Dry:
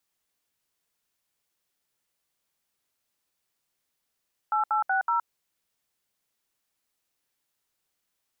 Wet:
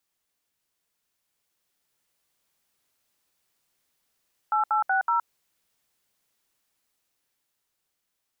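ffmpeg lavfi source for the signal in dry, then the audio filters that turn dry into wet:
-f lavfi -i "aevalsrc='0.0596*clip(min(mod(t,0.187),0.118-mod(t,0.187))/0.002,0,1)*(eq(floor(t/0.187),0)*(sin(2*PI*852*mod(t,0.187))+sin(2*PI*1336*mod(t,0.187)))+eq(floor(t/0.187),1)*(sin(2*PI*852*mod(t,0.187))+sin(2*PI*1336*mod(t,0.187)))+eq(floor(t/0.187),2)*(sin(2*PI*770*mod(t,0.187))+sin(2*PI*1477*mod(t,0.187)))+eq(floor(t/0.187),3)*(sin(2*PI*941*mod(t,0.187))+sin(2*PI*1336*mod(t,0.187))))':duration=0.748:sample_rate=44100"
-af "alimiter=limit=-22dB:level=0:latency=1:release=19,dynaudnorm=framelen=200:gausssize=17:maxgain=5dB"

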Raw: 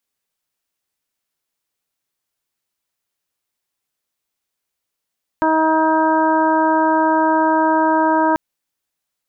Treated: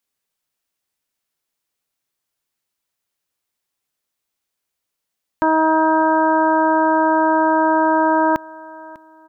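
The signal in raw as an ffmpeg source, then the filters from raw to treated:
-f lavfi -i "aevalsrc='0.133*sin(2*PI*317*t)+0.106*sin(2*PI*634*t)+0.168*sin(2*PI*951*t)+0.0501*sin(2*PI*1268*t)+0.0596*sin(2*PI*1585*t)':duration=2.94:sample_rate=44100"
-af "aecho=1:1:598|1196:0.0891|0.0267"

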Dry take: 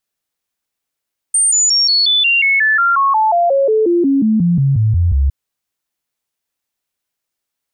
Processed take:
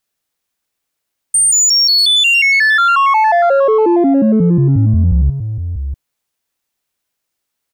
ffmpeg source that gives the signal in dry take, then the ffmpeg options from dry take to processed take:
-f lavfi -i "aevalsrc='0.335*clip(min(mod(t,0.18),0.18-mod(t,0.18))/0.005,0,1)*sin(2*PI*8790*pow(2,-floor(t/0.18)/3)*mod(t,0.18))':duration=3.96:sample_rate=44100"
-filter_complex "[0:a]asplit=2[link_01][link_02];[link_02]asoftclip=type=tanh:threshold=-19.5dB,volume=-4.5dB[link_03];[link_01][link_03]amix=inputs=2:normalize=0,asplit=2[link_04][link_05];[link_05]adelay=641.4,volume=-9dB,highshelf=frequency=4000:gain=-14.4[link_06];[link_04][link_06]amix=inputs=2:normalize=0"

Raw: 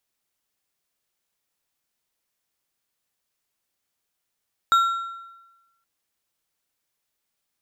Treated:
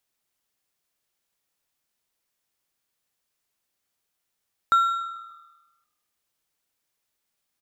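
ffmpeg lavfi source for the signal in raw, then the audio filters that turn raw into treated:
-f lavfi -i "aevalsrc='0.237*pow(10,-3*t/1.12)*sin(2*PI*1360*t)+0.0668*pow(10,-3*t/0.826)*sin(2*PI*3749.5*t)+0.0188*pow(10,-3*t/0.675)*sin(2*PI*7349.4*t)+0.00531*pow(10,-3*t/0.581)*sin(2*PI*12148.9*t)':duration=1.12:sample_rate=44100"
-filter_complex "[0:a]acrossover=split=2500[link_01][link_02];[link_02]acompressor=threshold=-37dB:ratio=4:attack=1:release=60[link_03];[link_01][link_03]amix=inputs=2:normalize=0,asplit=5[link_04][link_05][link_06][link_07][link_08];[link_05]adelay=146,afreqshift=-39,volume=-24dB[link_09];[link_06]adelay=292,afreqshift=-78,volume=-29dB[link_10];[link_07]adelay=438,afreqshift=-117,volume=-34.1dB[link_11];[link_08]adelay=584,afreqshift=-156,volume=-39.1dB[link_12];[link_04][link_09][link_10][link_11][link_12]amix=inputs=5:normalize=0"

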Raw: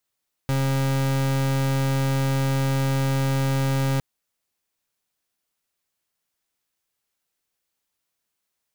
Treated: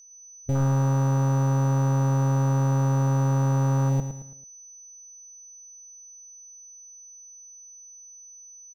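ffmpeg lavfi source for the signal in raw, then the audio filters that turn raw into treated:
-f lavfi -i "aevalsrc='0.0794*(2*lt(mod(135*t,1),0.38)-1)':duration=3.51:sample_rate=44100"
-filter_complex "[0:a]afwtdn=0.0447,aeval=exprs='val(0)+0.00398*sin(2*PI*6000*n/s)':channel_layout=same,asplit=2[link_01][link_02];[link_02]aecho=0:1:110|220|330|440:0.335|0.134|0.0536|0.0214[link_03];[link_01][link_03]amix=inputs=2:normalize=0"

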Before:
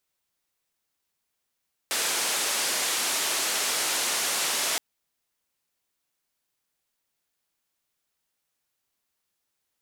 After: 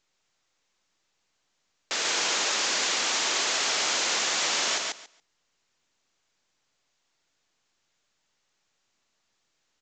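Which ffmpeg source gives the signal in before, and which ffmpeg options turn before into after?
-f lavfi -i "anoisesrc=color=white:duration=2.87:sample_rate=44100:seed=1,highpass=frequency=330,lowpass=frequency=9700,volume=-18.5dB"
-af "highpass=frequency=95:poles=1,aecho=1:1:140|280|420:0.708|0.113|0.0181" -ar 16000 -c:a pcm_mulaw

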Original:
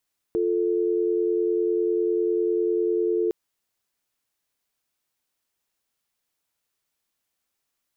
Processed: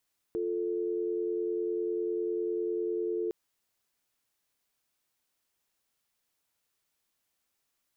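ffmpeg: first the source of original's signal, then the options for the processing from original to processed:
-f lavfi -i "aevalsrc='0.0708*(sin(2*PI*350*t)+sin(2*PI*440*t))':duration=2.96:sample_rate=44100"
-af "alimiter=level_in=2dB:limit=-24dB:level=0:latency=1:release=39,volume=-2dB"

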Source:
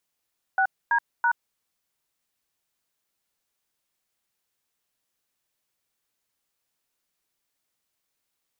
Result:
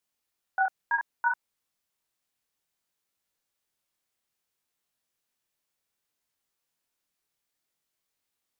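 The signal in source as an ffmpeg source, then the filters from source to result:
-f lavfi -i "aevalsrc='0.0891*clip(min(mod(t,0.33),0.076-mod(t,0.33))/0.002,0,1)*(eq(floor(t/0.33),0)*(sin(2*PI*770*mod(t,0.33))+sin(2*PI*1477*mod(t,0.33)))+eq(floor(t/0.33),1)*(sin(2*PI*941*mod(t,0.33))+sin(2*PI*1633*mod(t,0.33)))+eq(floor(t/0.33),2)*(sin(2*PI*941*mod(t,0.33))+sin(2*PI*1477*mod(t,0.33))))':duration=0.99:sample_rate=44100"
-af "flanger=delay=19.5:depth=7.3:speed=0.62"

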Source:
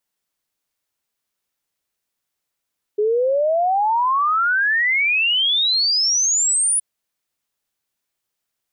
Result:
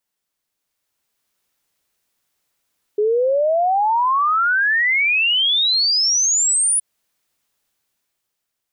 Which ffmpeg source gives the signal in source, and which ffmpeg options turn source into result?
-f lavfi -i "aevalsrc='0.178*clip(min(t,3.82-t)/0.01,0,1)*sin(2*PI*410*3.82/log(10000/410)*(exp(log(10000/410)*t/3.82)-1))':duration=3.82:sample_rate=44100"
-af "alimiter=limit=-21.5dB:level=0:latency=1:release=144,dynaudnorm=framelen=170:gausssize=11:maxgain=7.5dB"

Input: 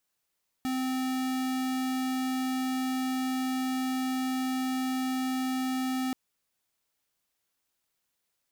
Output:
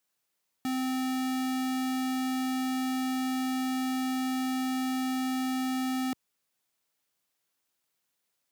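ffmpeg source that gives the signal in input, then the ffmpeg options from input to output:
-f lavfi -i "aevalsrc='0.0316*(2*lt(mod(259*t,1),0.5)-1)':duration=5.48:sample_rate=44100"
-af "highpass=100"

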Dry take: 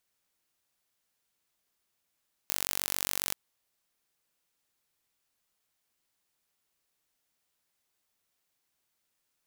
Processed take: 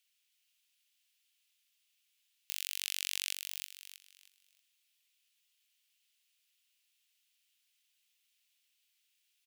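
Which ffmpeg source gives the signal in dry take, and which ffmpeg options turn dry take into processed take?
-f lavfi -i "aevalsrc='0.668*eq(mod(n,932),0)':duration=0.84:sample_rate=44100"
-af "aeval=exprs='(mod(2.11*val(0)+1,2)-1)/2.11':channel_layout=same,highpass=frequency=2800:width_type=q:width=2.6,aecho=1:1:317|634|951|1268:0.501|0.165|0.0546|0.018"

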